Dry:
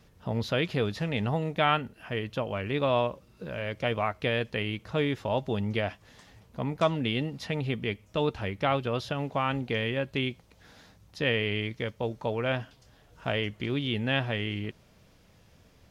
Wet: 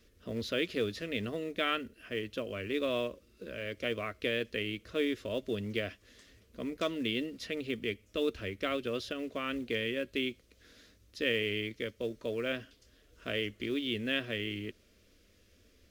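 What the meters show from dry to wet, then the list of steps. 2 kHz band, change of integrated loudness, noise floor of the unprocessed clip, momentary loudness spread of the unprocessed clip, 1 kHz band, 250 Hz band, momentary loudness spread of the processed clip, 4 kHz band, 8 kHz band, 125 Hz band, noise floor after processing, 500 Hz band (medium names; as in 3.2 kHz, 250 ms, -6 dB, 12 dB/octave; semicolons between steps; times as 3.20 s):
-4.0 dB, -5.0 dB, -60 dBFS, 8 LU, -12.0 dB, -4.0 dB, 8 LU, -2.5 dB, no reading, -13.5 dB, -65 dBFS, -4.5 dB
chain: static phaser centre 350 Hz, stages 4; in parallel at -6.5 dB: short-mantissa float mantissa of 2-bit; on the sum: trim -5 dB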